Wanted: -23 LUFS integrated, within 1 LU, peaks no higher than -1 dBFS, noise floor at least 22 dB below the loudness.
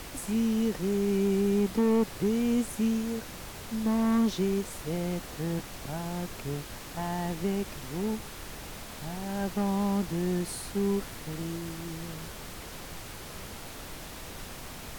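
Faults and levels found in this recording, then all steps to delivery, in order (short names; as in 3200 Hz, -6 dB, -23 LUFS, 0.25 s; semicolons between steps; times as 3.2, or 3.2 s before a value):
clipped 0.8%; flat tops at -20.0 dBFS; noise floor -43 dBFS; noise floor target -53 dBFS; loudness -30.5 LUFS; peak -20.0 dBFS; loudness target -23.0 LUFS
-> clip repair -20 dBFS; noise print and reduce 10 dB; gain +7.5 dB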